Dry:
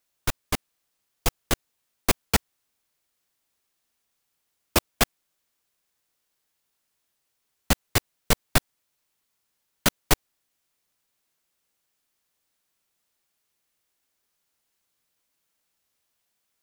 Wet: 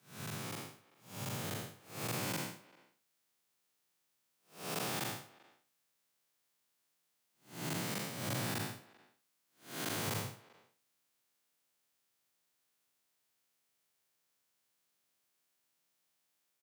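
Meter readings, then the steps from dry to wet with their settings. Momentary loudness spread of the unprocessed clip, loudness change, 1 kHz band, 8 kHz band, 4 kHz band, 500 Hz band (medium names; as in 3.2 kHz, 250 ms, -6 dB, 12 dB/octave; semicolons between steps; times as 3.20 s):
8 LU, -13.0 dB, -12.0 dB, -12.5 dB, -12.5 dB, -12.0 dB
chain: spectral blur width 240 ms; frequency shift +98 Hz; speakerphone echo 390 ms, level -22 dB; trim -2 dB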